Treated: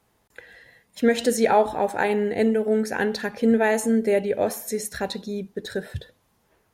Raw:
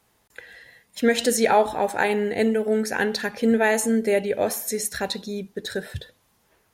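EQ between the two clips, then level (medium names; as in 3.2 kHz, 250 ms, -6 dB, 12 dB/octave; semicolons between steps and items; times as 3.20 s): tilt shelf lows +3 dB, about 1.4 kHz; -2.0 dB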